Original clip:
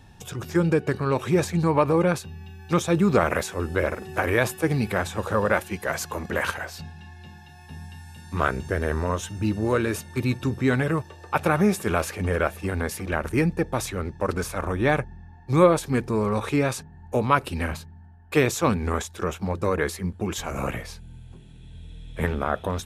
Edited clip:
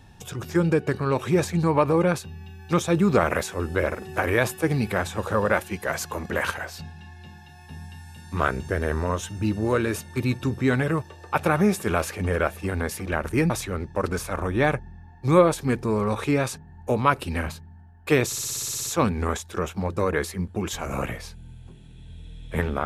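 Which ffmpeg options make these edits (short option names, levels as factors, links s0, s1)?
-filter_complex "[0:a]asplit=12[s0][s1][s2][s3][s4][s5][s6][s7][s8][s9][s10][s11];[s0]atrim=end=13.502[s12];[s1]atrim=start=13.748:end=18.572[s13];[s2]atrim=start=18.508:end=18.572[s14];[s3]atrim=start=18.508:end=18.572[s15];[s4]atrim=start=18.508:end=18.572[s16];[s5]atrim=start=18.508:end=18.572[s17];[s6]atrim=start=18.508:end=18.572[s18];[s7]atrim=start=18.508:end=18.572[s19];[s8]atrim=start=18.508:end=18.572[s20];[s9]atrim=start=18.508:end=18.572[s21];[s10]atrim=start=18.508:end=18.572[s22];[s11]atrim=start=18.508[s23];[s12][s13]acrossfade=d=0.004:c1=hsin:c2=hsin[s24];[s24][s14]acrossfade=d=0.004:c1=hsin:c2=hsin[s25];[s25][s15]acrossfade=d=0.004:c1=hsin:c2=hsin[s26];[s26][s16]acrossfade=d=0.004:c1=hsin:c2=hsin[s27];[s27][s17]acrossfade=d=0.004:c1=hsin:c2=hsin[s28];[s28][s18]acrossfade=d=0.004:c1=hsin:c2=hsin[s29];[s29][s19]acrossfade=d=0.004:c1=hsin:c2=hsin[s30];[s30][s20]acrossfade=d=0.004:c1=hsin:c2=hsin[s31];[s31][s21]acrossfade=d=0.004:c1=hsin:c2=hsin[s32];[s32][s22]acrossfade=d=0.004:c1=hsin:c2=hsin[s33];[s33][s23]acrossfade=d=0.004:c1=hsin:c2=hsin"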